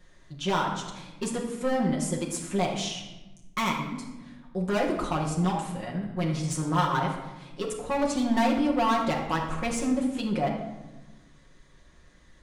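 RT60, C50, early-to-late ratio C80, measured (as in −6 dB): 1.1 s, 4.5 dB, 7.0 dB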